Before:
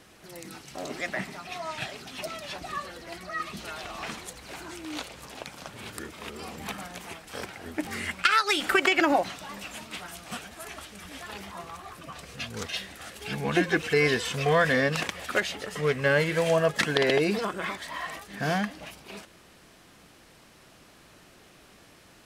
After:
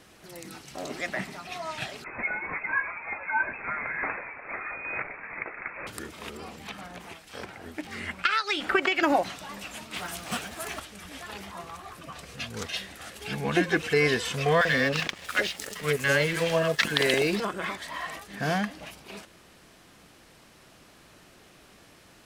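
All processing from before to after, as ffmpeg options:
-filter_complex "[0:a]asettb=1/sr,asplit=3[a][b][c];[a]atrim=end=2.044[d];[b]atrim=start=2.04:end=5.87,asetpts=PTS-STARTPTS,afade=t=in:d=0.004:c=qsin,afade=t=out:st=3.826:d=0.004:c=qsin,highpass=410,aeval=exprs='0.133*sin(PI/2*1.58*val(0)/0.133)':c=same,lowpass=f=2.4k:t=q:w=0.5098,lowpass=f=2.4k:t=q:w=0.6013,lowpass=f=2.4k:t=q:w=0.9,lowpass=f=2.4k:t=q:w=2.563,afreqshift=-2800[e];[c]atrim=start=5.866[f];[d][e]acrossfade=d=0.004:c1=hsin:c2=qsin[g];[g][f]acrossfade=d=0.004:c1=qsin:c2=hsin,asettb=1/sr,asplit=3[h][i][j];[h]atrim=end=6.374[k];[i]atrim=start=6.37:end=9.03,asetpts=PTS-STARTPTS,afade=t=in:d=0.004:c=qsin,afade=t=out:st=2.656:d=0.004:c=qsin,acrossover=split=2100[l][m];[l]aeval=exprs='val(0)*(1-0.5/2+0.5/2*cos(2*PI*1.7*n/s))':c=same[n];[m]aeval=exprs='val(0)*(1-0.5/2-0.5/2*cos(2*PI*1.7*n/s))':c=same[o];[n][o]amix=inputs=2:normalize=0,acrossover=split=5400[p][q];[q]acompressor=threshold=-54dB:ratio=4:attack=1:release=60[r];[p][r]amix=inputs=2:normalize=0[s];[j]atrim=start=9.026[t];[k][s]acrossfade=d=0.004:c1=hsin:c2=qsin[u];[u][t]acrossfade=d=0.004:c1=qsin:c2=hsin,asettb=1/sr,asplit=3[v][w][x];[v]atrim=end=9.964[y];[w]atrim=start=9.96:end=10.8,asetpts=PTS-STARTPTS,afade=t=in:d=0.004:c=qsin,afade=t=out:st=0.836:d=0.004:c=qsin,highpass=52,acontrast=31,acrusher=bits=5:mode=log:mix=0:aa=0.000001[z];[x]atrim=start=10.796[aa];[y][z]acrossfade=d=0.004:c1=hsin:c2=qsin[ab];[ab][aa]acrossfade=d=0.004:c1=qsin:c2=hsin,asettb=1/sr,asplit=3[ac][ad][ae];[ac]atrim=end=14.614[af];[ad]atrim=start=14.61:end=17.4,asetpts=PTS-STARTPTS,afade=t=in:d=0.004:c=qsin,afade=t=out:st=2.786:d=0.004:c=qsin,highshelf=f=2.5k:g=7.5,acrossover=split=750|5900[ag][ah][ai];[ag]adelay=40[aj];[ai]adelay=640[ak];[aj][ah][ak]amix=inputs=3:normalize=0,atrim=end_sample=123039,aeval=exprs='sgn(val(0))*max(abs(val(0))-0.00944,0)':c=same[al];[ae]atrim=start=17.396[am];[af][al]acrossfade=d=0.004:c1=hsin:c2=qsin[an];[an][am]acrossfade=d=0.004:c1=qsin:c2=hsin"

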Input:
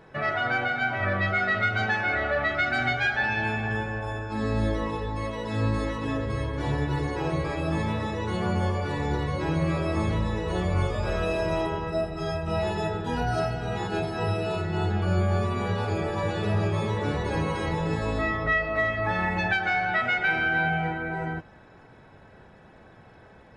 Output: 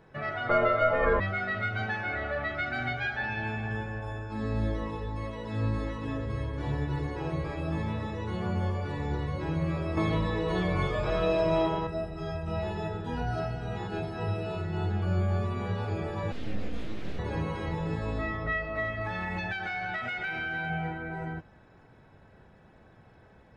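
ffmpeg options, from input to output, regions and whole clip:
-filter_complex "[0:a]asettb=1/sr,asplit=3[a][b][c];[a]atrim=end=0.494[d];[b]atrim=start=0.49:end=1.2,asetpts=PTS-STARTPTS,afade=t=in:d=0.004:c=qsin,afade=t=out:st=0.706:d=0.004:c=qsin,equalizer=f=760:t=o:w=2.2:g=13,afreqshift=-130[e];[c]atrim=start=1.196[f];[d][e]acrossfade=d=0.004:c1=hsin:c2=qsin[g];[g][f]acrossfade=d=0.004:c1=qsin:c2=hsin,asettb=1/sr,asplit=3[h][i][j];[h]atrim=end=9.974[k];[i]atrim=start=9.97:end=11.87,asetpts=PTS-STARTPTS,afade=t=in:d=0.004:c=qsin,afade=t=out:st=1.896:d=0.004:c=qsin,lowshelf=f=270:g=-7,acontrast=65,aecho=1:1:6.4:0.6,atrim=end_sample=83790[l];[j]atrim=start=11.866[m];[k][l]acrossfade=d=0.004:c1=hsin:c2=qsin[n];[n][m]acrossfade=d=0.004:c1=qsin:c2=hsin,asettb=1/sr,asplit=3[o][p][q];[o]atrim=end=16.324[r];[p]atrim=start=16.32:end=17.19,asetpts=PTS-STARTPTS,afade=t=in:d=0.004:c=qsin,afade=t=out:st=0.866:d=0.004:c=qsin,aeval=exprs='abs(val(0))':c=same,equalizer=f=970:w=1.1:g=-12.5[s];[q]atrim=start=17.186[t];[r][s]acrossfade=d=0.004:c1=hsin:c2=qsin[u];[u][t]acrossfade=d=0.004:c1=qsin:c2=hsin,asettb=1/sr,asplit=3[v][w][x];[v]atrim=end=19.014[y];[w]atrim=start=19.01:end=20.7,asetpts=PTS-STARTPTS,afade=t=in:d=0.004:c=qsin,afade=t=out:st=1.686:d=0.004:c=qsin,equalizer=f=7.9k:w=0.3:g=7.5,acompressor=threshold=-23dB:ratio=4:attack=3.2:release=140:knee=1:detection=peak,asoftclip=type=hard:threshold=-19dB[z];[x]atrim=start=20.696[aa];[y][z]acrossfade=d=0.004:c1=hsin:c2=qsin[ab];[ab][aa]acrossfade=d=0.004:c1=qsin:c2=hsin,acrossover=split=5000[ac][ad];[ad]acompressor=threshold=-59dB:ratio=4:attack=1:release=60[ae];[ac][ae]amix=inputs=2:normalize=0,lowshelf=f=220:g=5,volume=-7dB"

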